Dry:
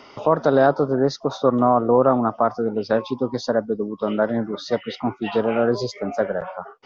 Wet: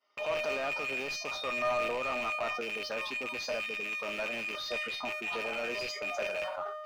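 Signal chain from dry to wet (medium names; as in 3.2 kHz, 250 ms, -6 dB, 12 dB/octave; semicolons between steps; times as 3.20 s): rattle on loud lows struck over -37 dBFS, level -12 dBFS; expander -33 dBFS; tilt EQ +2 dB/octave; waveshaping leveller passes 1; peak limiter -13.5 dBFS, peak gain reduction 10 dB; treble shelf 5.3 kHz +9.5 dB; feedback comb 610 Hz, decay 0.39 s, mix 90%; overdrive pedal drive 18 dB, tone 1.5 kHz, clips at -22 dBFS; decay stretcher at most 36 dB/s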